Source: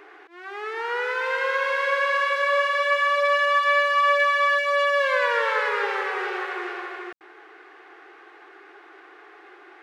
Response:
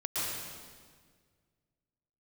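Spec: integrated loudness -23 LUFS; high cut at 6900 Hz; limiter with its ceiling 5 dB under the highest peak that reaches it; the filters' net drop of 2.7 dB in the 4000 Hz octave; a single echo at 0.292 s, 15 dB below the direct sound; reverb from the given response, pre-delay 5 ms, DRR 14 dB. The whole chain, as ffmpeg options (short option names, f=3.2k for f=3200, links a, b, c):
-filter_complex "[0:a]lowpass=6.9k,equalizer=f=4k:t=o:g=-4,alimiter=limit=-15.5dB:level=0:latency=1,aecho=1:1:292:0.178,asplit=2[a][b];[1:a]atrim=start_sample=2205,adelay=5[c];[b][c]afir=irnorm=-1:irlink=0,volume=-20.5dB[d];[a][d]amix=inputs=2:normalize=0,volume=0.5dB"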